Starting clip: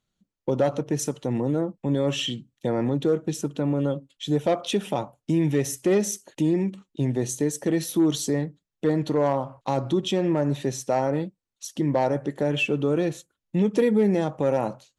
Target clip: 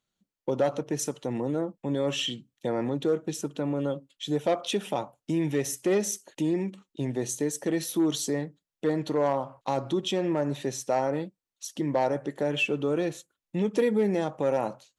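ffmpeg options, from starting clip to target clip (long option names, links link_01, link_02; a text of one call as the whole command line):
ffmpeg -i in.wav -af "lowshelf=frequency=200:gain=-9,volume=-1.5dB" out.wav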